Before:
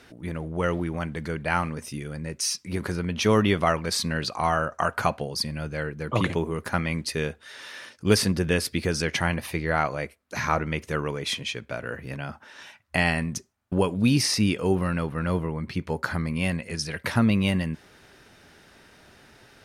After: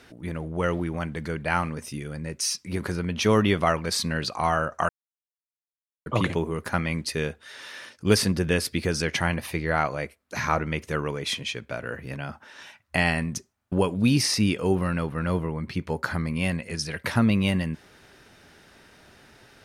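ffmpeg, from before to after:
ffmpeg -i in.wav -filter_complex "[0:a]asplit=3[link_01][link_02][link_03];[link_01]atrim=end=4.89,asetpts=PTS-STARTPTS,afade=type=out:start_time=4.886:duration=0.004:curve=hsin[link_04];[link_02]atrim=start=4.89:end=6.06,asetpts=PTS-STARTPTS,volume=0[link_05];[link_03]atrim=start=6.06,asetpts=PTS-STARTPTS,afade=type=in:duration=0.004:curve=hsin[link_06];[link_04][link_05][link_06]concat=n=3:v=0:a=1" out.wav

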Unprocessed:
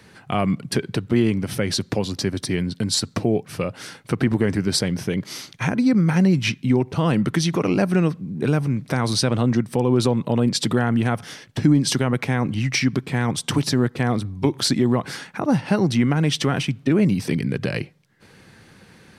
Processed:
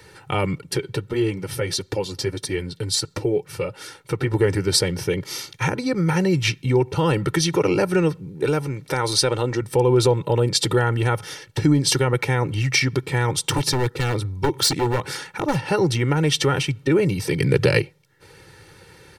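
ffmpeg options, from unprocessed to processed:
ffmpeg -i in.wav -filter_complex "[0:a]asettb=1/sr,asplit=3[link_01][link_02][link_03];[link_01]atrim=end=0.584[link_04];[link_02]atrim=start=0.58:end=4.34,asetpts=PTS-STARTPTS,afade=type=in:duration=0.004:curve=qsin,afade=type=out:start_time=3.756:duration=0.004:curve=qsin,flanger=delay=2.3:depth=6.2:regen=-35:speed=1.5:shape=triangular[link_05];[link_03]atrim=start=4.336[link_06];[link_04][link_05]acrossfade=duration=0.004:curve1=hsin:curve2=qsin[link_07];[link_07][link_06]acrossfade=duration=0.004:curve1=qsin:curve2=hsin,asettb=1/sr,asplit=3[link_08][link_09][link_10];[link_08]atrim=end=8.294[link_11];[link_09]atrim=start=8.29:end=9.62,asetpts=PTS-STARTPTS,afade=type=in:duration=0.004:curve=qsin,afade=type=out:start_time=1.326:duration=0.004:curve=qsin,equalizer=frequency=88:width_type=o:width=2:gain=-8[link_12];[link_10]atrim=start=9.616[link_13];[link_11][link_12]acrossfade=duration=0.004:curve1=hsin:curve2=qsin[link_14];[link_14][link_13]acrossfade=duration=0.004:curve1=qsin:curve2=hsin,asettb=1/sr,asplit=3[link_15][link_16][link_17];[link_15]atrim=end=13.434[link_18];[link_16]atrim=start=13.43:end=15.63,asetpts=PTS-STARTPTS,afade=type=in:duration=0.004:curve=qsin,afade=type=out:start_time=2.196:duration=0.004:curve=qsin,aeval=exprs='0.2*(abs(mod(val(0)/0.2+3,4)-2)-1)':channel_layout=same[link_19];[link_17]atrim=start=15.626[link_20];[link_18][link_19]acrossfade=duration=0.004:curve1=hsin:curve2=qsin[link_21];[link_21][link_20]acrossfade=duration=0.004:curve1=qsin:curve2=hsin,asplit=3[link_22][link_23][link_24];[link_22]atrim=end=17.402[link_25];[link_23]atrim=start=17.398:end=17.812,asetpts=PTS-STARTPTS,volume=6dB[link_26];[link_24]atrim=start=17.808[link_27];[link_25][link_26]acrossfade=duration=0.004:curve1=hsin:curve2=hsin[link_28];[link_28][link_27]acrossfade=duration=0.004:curve1=hsin:curve2=hsin,highshelf=frequency=8900:gain=4.5,aecho=1:1:2.2:0.84" out.wav

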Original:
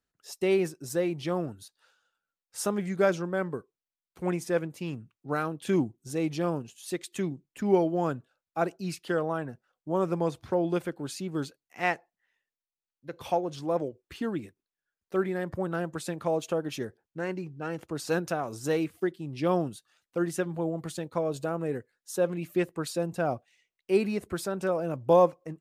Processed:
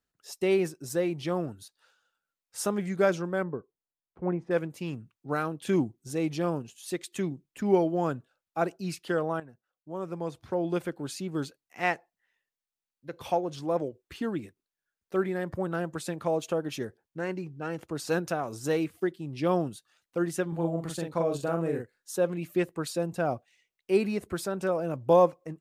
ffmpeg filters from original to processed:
ffmpeg -i in.wav -filter_complex "[0:a]asettb=1/sr,asplit=3[link_01][link_02][link_03];[link_01]atrim=end=3.434[link_04];[link_02]atrim=start=3.43:end=4.51,asetpts=PTS-STARTPTS,afade=type=in:duration=0.004:curve=qsin,afade=type=out:start_time=1.076:duration=0.004:curve=qsin,lowpass=1100[link_05];[link_03]atrim=start=4.506[link_06];[link_04][link_05]acrossfade=duration=0.004:curve1=hsin:curve2=qsin[link_07];[link_07][link_06]acrossfade=duration=0.004:curve1=qsin:curve2=hsin,asettb=1/sr,asplit=3[link_08][link_09][link_10];[link_08]atrim=end=20.484[link_11];[link_09]atrim=start=20.48:end=22.12,asetpts=PTS-STARTPTS,afade=type=in:duration=0.004:curve=qsin,afade=type=out:start_time=1.636:duration=0.004:curve=qsin,asplit=2[link_12][link_13];[link_13]adelay=42,volume=-3.5dB[link_14];[link_12][link_14]amix=inputs=2:normalize=0,atrim=end_sample=72324[link_15];[link_10]atrim=start=22.116[link_16];[link_11][link_15]acrossfade=duration=0.004:curve1=hsin:curve2=qsin[link_17];[link_17][link_16]acrossfade=duration=0.004:curve1=qsin:curve2=hsin,asplit=2[link_18][link_19];[link_18]atrim=end=9.4,asetpts=PTS-STARTPTS,afade=type=out:start_time=9.396:duration=0.004:curve=hsin:silence=0.251189[link_20];[link_19]atrim=start=9.4,asetpts=PTS-STARTPTS,afade=type=in:duration=1.45:curve=qua:silence=0.251189[link_21];[link_20][link_21]concat=n=2:v=0:a=1" out.wav

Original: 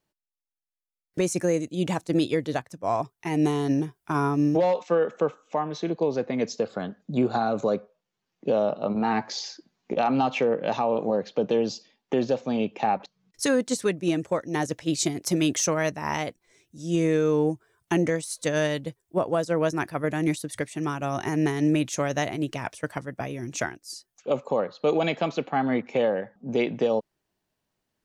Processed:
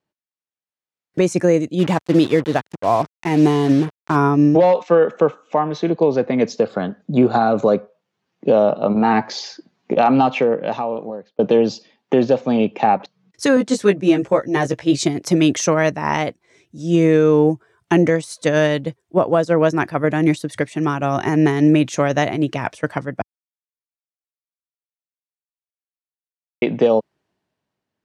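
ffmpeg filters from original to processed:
ffmpeg -i in.wav -filter_complex "[0:a]asplit=3[link_01][link_02][link_03];[link_01]afade=type=out:start_time=1.78:duration=0.02[link_04];[link_02]acrusher=bits=5:mix=0:aa=0.5,afade=type=in:start_time=1.78:duration=0.02,afade=type=out:start_time=4.15:duration=0.02[link_05];[link_03]afade=type=in:start_time=4.15:duration=0.02[link_06];[link_04][link_05][link_06]amix=inputs=3:normalize=0,asettb=1/sr,asplit=3[link_07][link_08][link_09];[link_07]atrim=end=13.554[link_10];[link_08]atrim=start=13.55:end=15.04,asetpts=PTS-STARTPTS,afade=type=in:duration=0.004:curve=qsin,afade=type=out:start_time=1.486:duration=0.004:curve=qsin,asplit=2[link_11][link_12];[link_12]adelay=15,volume=-4dB[link_13];[link_11][link_13]amix=inputs=2:normalize=0,atrim=end_sample=65709[link_14];[link_09]atrim=start=15.036[link_15];[link_10][link_14]acrossfade=duration=0.004:curve1=hsin:curve2=qsin[link_16];[link_16][link_15]acrossfade=duration=0.004:curve1=qsin:curve2=hsin,asplit=4[link_17][link_18][link_19][link_20];[link_17]atrim=end=11.39,asetpts=PTS-STARTPTS,afade=type=out:start_time=10.11:duration=1.28[link_21];[link_18]atrim=start=11.39:end=23.22,asetpts=PTS-STARTPTS,afade=type=in:duration=0.004:curve=hsin,afade=type=out:start_time=11.826:duration=0.004:curve=hsin[link_22];[link_19]atrim=start=23.22:end=26.62,asetpts=PTS-STARTPTS,volume=0[link_23];[link_20]atrim=start=26.62,asetpts=PTS-STARTPTS,afade=type=in:duration=0.004:curve=hsin[link_24];[link_21][link_22][link_23][link_24]concat=n=4:v=0:a=1,highpass=82,aemphasis=mode=reproduction:type=50fm,dynaudnorm=framelen=100:gausssize=17:maxgain=9.5dB" out.wav

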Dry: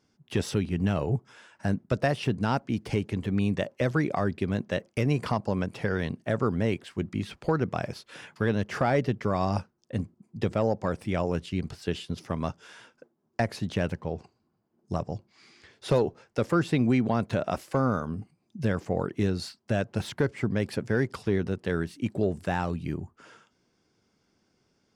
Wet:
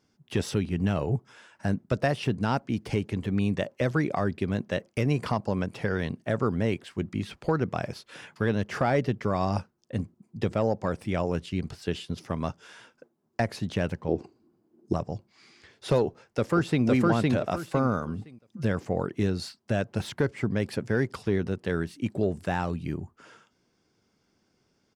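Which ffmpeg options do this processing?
ffmpeg -i in.wav -filter_complex "[0:a]asettb=1/sr,asplit=3[link_01][link_02][link_03];[link_01]atrim=end=14.084[link_04];[link_02]atrim=start=14.08:end=14.93,asetpts=PTS-STARTPTS,afade=type=in:duration=0.004:curve=qsin,afade=type=out:start_time=0.846:duration=0.004:curve=qsin,equalizer=frequency=320:width_type=o:width=1:gain=14.5[link_05];[link_03]atrim=start=14.926[link_06];[link_04][link_05]acrossfade=duration=0.004:curve1=hsin:curve2=qsin[link_07];[link_07][link_06]acrossfade=duration=0.004:curve1=qsin:curve2=hsin,asplit=2[link_08][link_09];[link_09]afade=type=in:start_time=16.05:duration=0.01,afade=type=out:start_time=16.85:duration=0.01,aecho=0:1:510|1020|1530|2040:0.944061|0.236015|0.0590038|0.014751[link_10];[link_08][link_10]amix=inputs=2:normalize=0" out.wav

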